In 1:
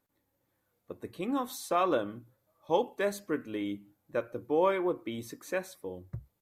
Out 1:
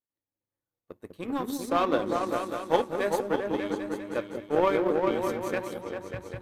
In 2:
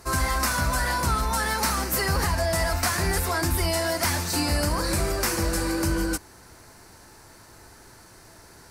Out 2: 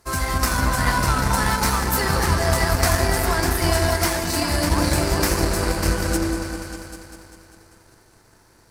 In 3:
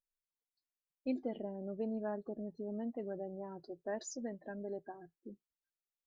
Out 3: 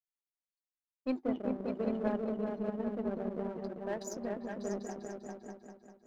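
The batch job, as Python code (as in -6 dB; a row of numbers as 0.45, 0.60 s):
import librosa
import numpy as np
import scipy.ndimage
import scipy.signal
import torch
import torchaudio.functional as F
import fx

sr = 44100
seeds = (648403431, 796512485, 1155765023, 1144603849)

y = fx.echo_opening(x, sr, ms=198, hz=400, octaves=2, feedback_pct=70, wet_db=0)
y = fx.power_curve(y, sr, exponent=1.4)
y = F.gain(torch.from_numpy(y), 5.0).numpy()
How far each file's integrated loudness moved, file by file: +3.5, +4.0, +5.0 LU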